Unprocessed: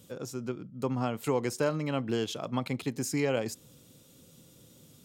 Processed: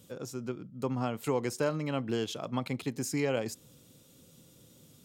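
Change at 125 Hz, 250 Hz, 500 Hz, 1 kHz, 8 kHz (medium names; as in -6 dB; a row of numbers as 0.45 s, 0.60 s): -1.5 dB, -1.5 dB, -1.5 dB, -1.5 dB, -1.5 dB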